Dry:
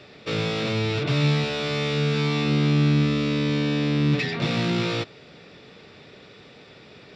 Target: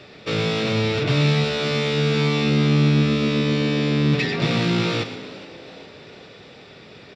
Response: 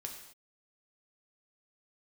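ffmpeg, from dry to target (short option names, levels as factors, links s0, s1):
-filter_complex "[0:a]asplit=5[s0][s1][s2][s3][s4];[s1]adelay=410,afreqshift=81,volume=0.126[s5];[s2]adelay=820,afreqshift=162,volume=0.0668[s6];[s3]adelay=1230,afreqshift=243,volume=0.0355[s7];[s4]adelay=1640,afreqshift=324,volume=0.0188[s8];[s0][s5][s6][s7][s8]amix=inputs=5:normalize=0,asplit=2[s9][s10];[1:a]atrim=start_sample=2205,adelay=114[s11];[s10][s11]afir=irnorm=-1:irlink=0,volume=0.398[s12];[s9][s12]amix=inputs=2:normalize=0,volume=1.41"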